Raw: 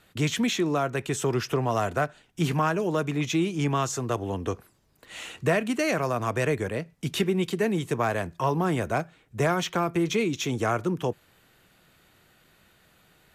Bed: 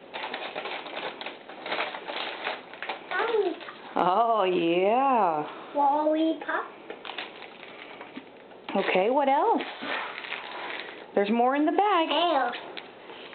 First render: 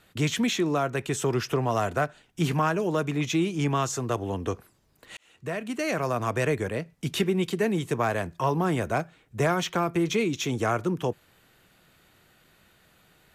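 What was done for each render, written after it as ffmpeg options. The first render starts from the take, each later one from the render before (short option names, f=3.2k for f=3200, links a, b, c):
-filter_complex "[0:a]asplit=2[a][b];[a]atrim=end=5.17,asetpts=PTS-STARTPTS,afade=t=out:st=5.166:d=0.004:c=hsin[c];[b]atrim=start=5.17,asetpts=PTS-STARTPTS,afade=t=in:d=0.95[d];[c][d]concat=n=2:v=0:a=1"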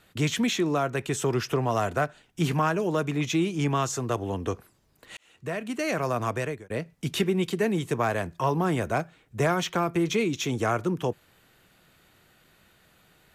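-filter_complex "[0:a]asplit=2[a][b];[a]atrim=end=6.7,asetpts=PTS-STARTPTS,afade=t=out:st=6.26:d=0.44[c];[b]atrim=start=6.7,asetpts=PTS-STARTPTS,afade=t=in:d=0.004:c=hsin[d];[c][d]concat=n=2:v=0:a=1"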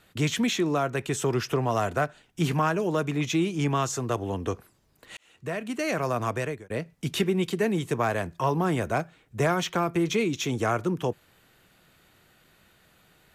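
-af anull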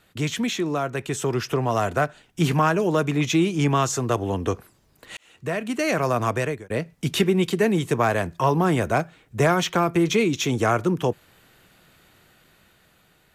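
-af "dynaudnorm=f=680:g=5:m=5dB"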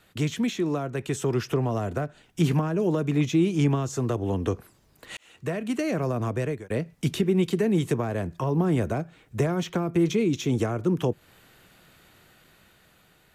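-filter_complex "[0:a]alimiter=limit=-11.5dB:level=0:latency=1:release=158,acrossover=split=490[a][b];[b]acompressor=threshold=-34dB:ratio=6[c];[a][c]amix=inputs=2:normalize=0"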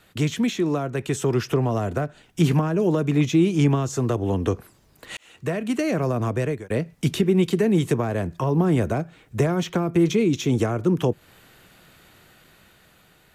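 -af "volume=3.5dB"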